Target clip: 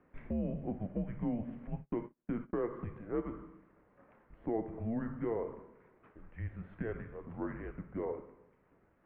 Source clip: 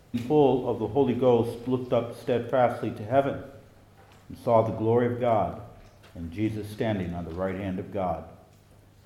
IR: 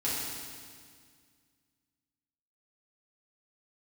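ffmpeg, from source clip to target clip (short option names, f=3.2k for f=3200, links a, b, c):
-filter_complex "[0:a]acompressor=threshold=-25dB:ratio=4,highpass=f=300:t=q:w=0.5412,highpass=f=300:t=q:w=1.307,lowpass=f=2.3k:t=q:w=0.5176,lowpass=f=2.3k:t=q:w=0.7071,lowpass=f=2.3k:t=q:w=1.932,afreqshift=-230,asplit=3[a][b][c];[a]afade=t=out:st=1.72:d=0.02[d];[b]agate=range=-36dB:threshold=-34dB:ratio=16:detection=peak,afade=t=in:st=1.72:d=0.02,afade=t=out:st=2.68:d=0.02[e];[c]afade=t=in:st=2.68:d=0.02[f];[d][e][f]amix=inputs=3:normalize=0,volume=-6.5dB"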